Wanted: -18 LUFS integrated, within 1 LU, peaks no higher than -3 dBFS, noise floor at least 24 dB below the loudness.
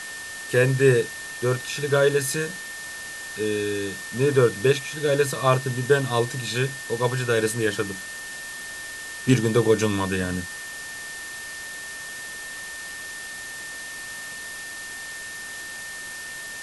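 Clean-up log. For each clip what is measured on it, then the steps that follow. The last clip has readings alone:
steady tone 1.8 kHz; tone level -35 dBFS; noise floor -36 dBFS; noise floor target -50 dBFS; loudness -25.5 LUFS; peak level -4.5 dBFS; loudness target -18.0 LUFS
-> band-stop 1.8 kHz, Q 30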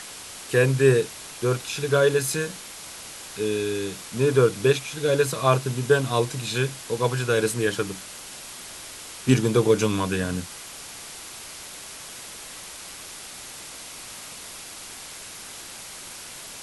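steady tone not found; noise floor -40 dBFS; noise floor target -48 dBFS
-> noise reduction 8 dB, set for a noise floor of -40 dBFS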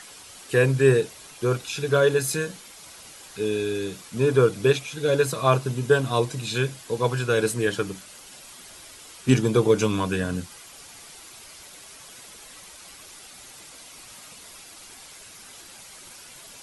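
noise floor -46 dBFS; noise floor target -48 dBFS
-> noise reduction 6 dB, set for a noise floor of -46 dBFS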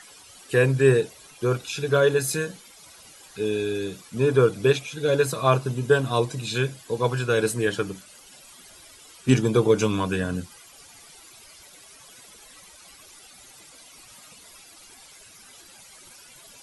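noise floor -50 dBFS; loudness -23.5 LUFS; peak level -5.0 dBFS; loudness target -18.0 LUFS
-> trim +5.5 dB; peak limiter -3 dBFS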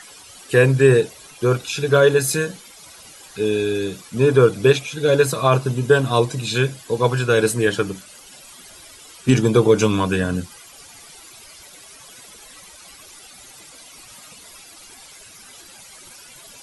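loudness -18.5 LUFS; peak level -3.0 dBFS; noise floor -44 dBFS

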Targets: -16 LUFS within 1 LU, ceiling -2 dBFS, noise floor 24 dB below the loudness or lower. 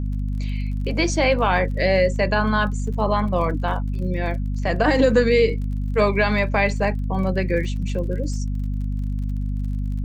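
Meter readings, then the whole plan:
tick rate 34 per s; hum 50 Hz; highest harmonic 250 Hz; hum level -22 dBFS; loudness -22.0 LUFS; peak level -5.5 dBFS; loudness target -16.0 LUFS
-> de-click; de-hum 50 Hz, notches 5; trim +6 dB; peak limiter -2 dBFS

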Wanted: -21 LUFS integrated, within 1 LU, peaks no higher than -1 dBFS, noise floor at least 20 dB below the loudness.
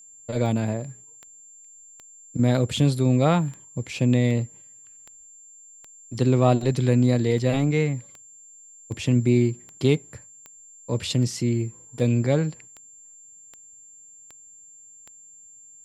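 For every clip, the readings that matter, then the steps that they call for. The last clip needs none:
clicks found 21; steady tone 7.3 kHz; tone level -46 dBFS; loudness -23.0 LUFS; peak level -5.0 dBFS; loudness target -21.0 LUFS
-> de-click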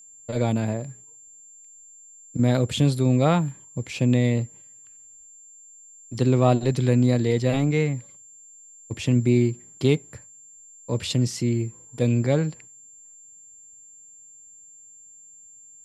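clicks found 0; steady tone 7.3 kHz; tone level -46 dBFS
-> band-stop 7.3 kHz, Q 30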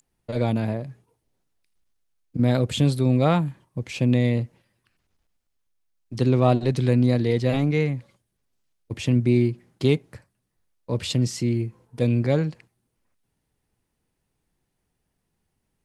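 steady tone not found; loudness -23.0 LUFS; peak level -5.0 dBFS; loudness target -21.0 LUFS
-> trim +2 dB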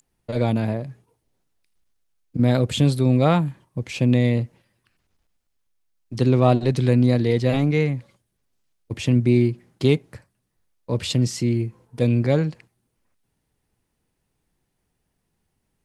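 loudness -21.0 LUFS; peak level -3.0 dBFS; noise floor -75 dBFS

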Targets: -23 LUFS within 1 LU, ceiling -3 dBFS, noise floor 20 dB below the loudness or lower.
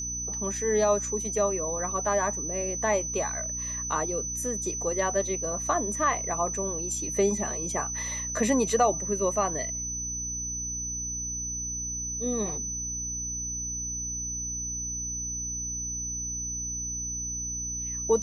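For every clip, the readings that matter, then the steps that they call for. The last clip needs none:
hum 60 Hz; highest harmonic 300 Hz; hum level -38 dBFS; steady tone 6 kHz; tone level -31 dBFS; loudness -28.5 LUFS; peak level -11.5 dBFS; loudness target -23.0 LUFS
-> hum notches 60/120/180/240/300 Hz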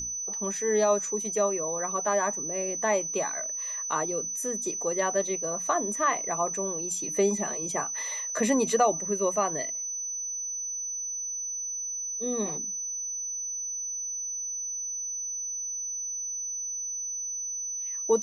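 hum not found; steady tone 6 kHz; tone level -31 dBFS
-> band-stop 6 kHz, Q 30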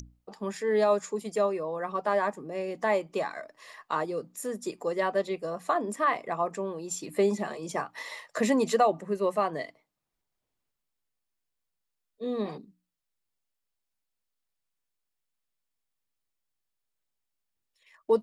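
steady tone not found; loudness -29.5 LUFS; peak level -12.5 dBFS; loudness target -23.0 LUFS
-> trim +6.5 dB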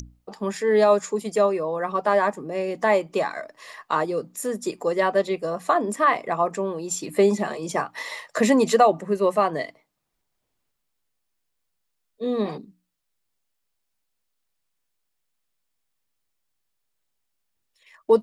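loudness -23.5 LUFS; peak level -6.0 dBFS; noise floor -77 dBFS

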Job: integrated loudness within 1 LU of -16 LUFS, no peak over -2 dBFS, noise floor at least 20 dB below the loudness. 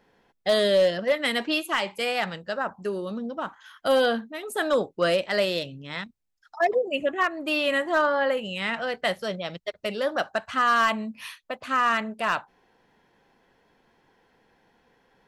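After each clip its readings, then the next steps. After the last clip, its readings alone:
clipped samples 0.3%; clipping level -14.5 dBFS; loudness -25.5 LUFS; peak level -14.5 dBFS; loudness target -16.0 LUFS
-> clip repair -14.5 dBFS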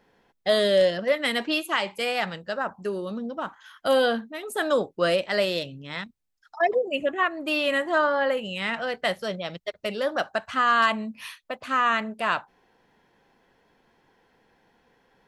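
clipped samples 0.0%; loudness -25.5 LUFS; peak level -9.0 dBFS; loudness target -16.0 LUFS
-> trim +9.5 dB; peak limiter -2 dBFS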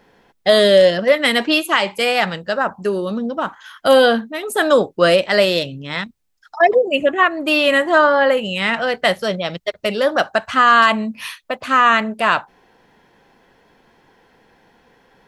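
loudness -16.0 LUFS; peak level -2.0 dBFS; noise floor -57 dBFS

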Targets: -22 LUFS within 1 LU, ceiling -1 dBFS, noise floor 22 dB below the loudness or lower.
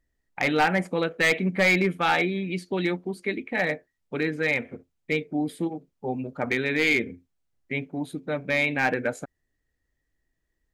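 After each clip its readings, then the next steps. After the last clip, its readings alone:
clipped samples 0.5%; clipping level -15.0 dBFS; loudness -25.5 LUFS; peak level -15.0 dBFS; loudness target -22.0 LUFS
-> clip repair -15 dBFS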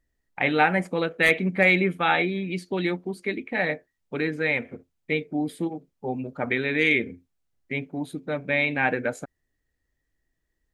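clipped samples 0.0%; loudness -25.0 LUFS; peak level -6.0 dBFS; loudness target -22.0 LUFS
-> trim +3 dB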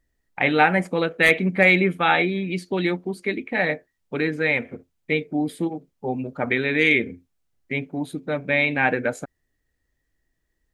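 loudness -22.0 LUFS; peak level -3.0 dBFS; noise floor -75 dBFS

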